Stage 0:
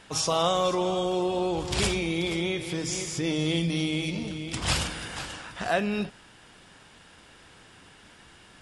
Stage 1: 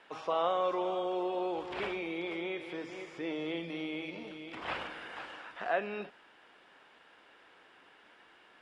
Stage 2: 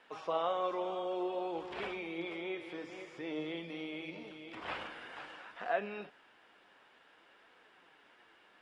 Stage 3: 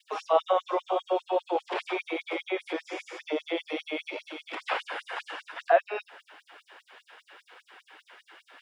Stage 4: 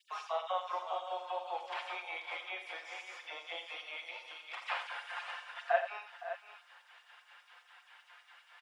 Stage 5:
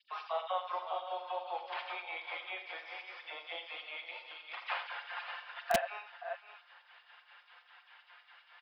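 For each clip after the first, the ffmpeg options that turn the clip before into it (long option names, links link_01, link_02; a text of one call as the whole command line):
ffmpeg -i in.wav -filter_complex "[0:a]acrossover=split=3000[link_01][link_02];[link_02]acompressor=threshold=-44dB:ratio=4:attack=1:release=60[link_03];[link_01][link_03]amix=inputs=2:normalize=0,acrossover=split=300 3300:gain=0.0708 1 0.112[link_04][link_05][link_06];[link_04][link_05][link_06]amix=inputs=3:normalize=0,volume=-4.5dB" out.wav
ffmpeg -i in.wav -af "flanger=delay=3.8:depth=6.4:regen=69:speed=0.53:shape=triangular,volume=1dB" out.wav
ffmpeg -i in.wav -filter_complex "[0:a]adynamicequalizer=threshold=0.00447:dfrequency=620:dqfactor=0.75:tfrequency=620:tqfactor=0.75:attack=5:release=100:ratio=0.375:range=3.5:mode=boostabove:tftype=bell,asplit=2[link_01][link_02];[link_02]acompressor=threshold=-39dB:ratio=6,volume=3dB[link_03];[link_01][link_03]amix=inputs=2:normalize=0,afftfilt=real='re*gte(b*sr/1024,250*pow(5700/250,0.5+0.5*sin(2*PI*5*pts/sr)))':imag='im*gte(b*sr/1024,250*pow(5700/250,0.5+0.5*sin(2*PI*5*pts/sr)))':win_size=1024:overlap=0.75,volume=4.5dB" out.wav
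ffmpeg -i in.wav -filter_complex "[0:a]highpass=frequency=740:width=0.5412,highpass=frequency=740:width=1.3066,aecho=1:1:5.7:0.48,asplit=2[link_01][link_02];[link_02]aecho=0:1:43|87|513|567:0.266|0.316|0.15|0.266[link_03];[link_01][link_03]amix=inputs=2:normalize=0,volume=-7dB" out.wav
ffmpeg -i in.wav -filter_complex "[0:a]aresample=11025,aresample=44100,acrossover=split=620|2100|3500[link_01][link_02][link_03][link_04];[link_02]aeval=exprs='(mod(15*val(0)+1,2)-1)/15':channel_layout=same[link_05];[link_01][link_05][link_03][link_04]amix=inputs=4:normalize=0" out.wav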